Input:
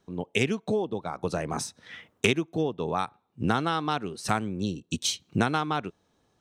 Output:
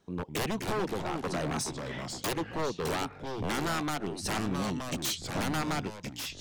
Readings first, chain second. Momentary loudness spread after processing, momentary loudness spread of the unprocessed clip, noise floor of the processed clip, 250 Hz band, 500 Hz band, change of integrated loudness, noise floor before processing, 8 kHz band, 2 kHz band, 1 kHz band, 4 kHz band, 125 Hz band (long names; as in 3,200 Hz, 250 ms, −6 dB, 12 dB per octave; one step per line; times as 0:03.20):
5 LU, 7 LU, −48 dBFS, −4.0 dB, −4.5 dB, −4.0 dB, −71 dBFS, −1.0 dB, −4.0 dB, −4.5 dB, −3.0 dB, −3.5 dB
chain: wave folding −26 dBFS
delay with pitch and tempo change per echo 188 ms, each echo −3 semitones, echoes 3, each echo −6 dB